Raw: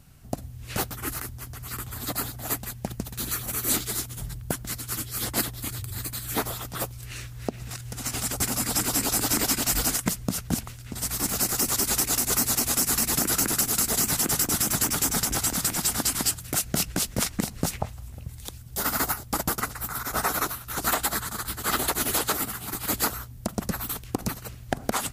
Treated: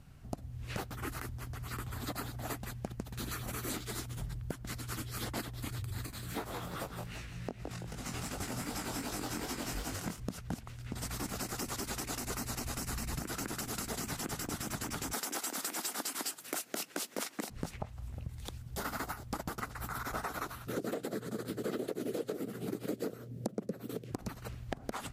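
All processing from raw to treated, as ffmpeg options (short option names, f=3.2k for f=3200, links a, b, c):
-filter_complex "[0:a]asettb=1/sr,asplit=3[a][b][c];[a]atrim=end=6.064[d];[b]atrim=start=6.06:end=10.2,asetpts=PTS-STARTPTS,afade=t=in:d=0.004:c=qsin,afade=t=out:st=4.136:d=0.004:c=qsin,asplit=5[e][f][g][h][i];[f]adelay=166,afreqshift=54,volume=-7dB[j];[g]adelay=332,afreqshift=108,volume=-16.4dB[k];[h]adelay=498,afreqshift=162,volume=-25.7dB[l];[i]adelay=664,afreqshift=216,volume=-35.1dB[m];[e][j][k][l][m]amix=inputs=5:normalize=0,atrim=end_sample=182574,flanger=delay=19.5:depth=4.2:speed=2.6[n];[c]atrim=start=10.196[o];[d][n]acrossfade=d=0.004:c1=hsin:c2=qsin[p];[p][o]acrossfade=d=0.004:c1=qsin:c2=hsin,asettb=1/sr,asplit=3[q][r][s];[q]atrim=end=12.184[t];[r]atrim=start=12.18:end=13.24,asetpts=PTS-STARTPTS,afade=t=in:d=0.004:c=qsin,afade=t=out:st=1.056:d=0.004:c=qsin,asubboost=boost=9:cutoff=150,bandreject=f=3.4k:w=17[u];[s]atrim=start=13.236[v];[t][u]acrossfade=d=0.004:c1=hsin:c2=qsin[w];[w][v]acrossfade=d=0.004:c1=qsin:c2=hsin,asettb=1/sr,asplit=3[x][y][z];[x]atrim=end=15.134[aa];[y]atrim=start=15.13:end=17.5,asetpts=PTS-STARTPTS,afade=t=in:d=0.004:c=qsin,afade=t=out:st=2.366:d=0.004:c=qsin,highpass=f=270:w=0.5412,highpass=f=270:w=1.3066,highshelf=f=8.7k:g=9,acontrast=22[ab];[z]atrim=start=17.496[ac];[aa][ab]acrossfade=d=0.004:c1=hsin:c2=qsin[ad];[ad][ac]acrossfade=d=0.004:c1=qsin:c2=hsin,asettb=1/sr,asplit=3[ae][af][ag];[ae]atrim=end=20.674[ah];[af]atrim=start=20.67:end=24.12,asetpts=PTS-STARTPTS,afade=t=in:d=0.004:c=qsin,afade=t=out:st=3.446:d=0.004:c=qsin,lowshelf=f=670:t=q:w=3:g=11,asoftclip=type=hard:threshold=-4dB,highpass=f=140:w=0.5412,highpass=f=140:w=1.3066[ai];[ag]atrim=start=24.116[aj];[ah][ai]acrossfade=d=0.004:c1=hsin:c2=qsin[ak];[ak][aj]acrossfade=d=0.004:c1=qsin:c2=hsin,lowpass=f=2.8k:p=1,acompressor=threshold=-33dB:ratio=6,volume=-2dB"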